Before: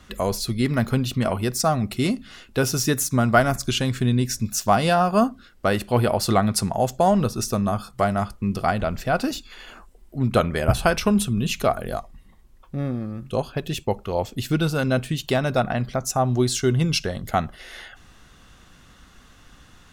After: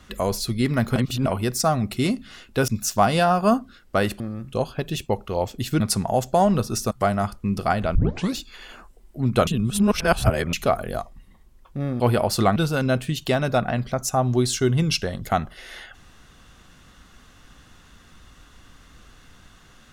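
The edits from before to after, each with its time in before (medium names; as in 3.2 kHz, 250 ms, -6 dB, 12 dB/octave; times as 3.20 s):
0.96–1.26 s: reverse
2.68–4.38 s: delete
5.90–6.46 s: swap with 12.98–14.58 s
7.57–7.89 s: delete
8.93 s: tape start 0.42 s
10.45–11.51 s: reverse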